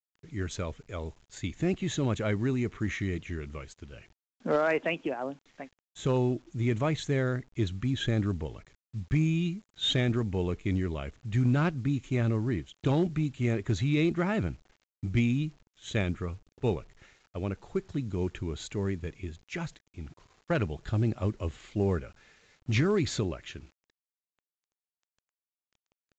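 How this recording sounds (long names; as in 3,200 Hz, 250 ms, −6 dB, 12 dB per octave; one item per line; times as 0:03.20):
a quantiser's noise floor 10 bits, dither none
mu-law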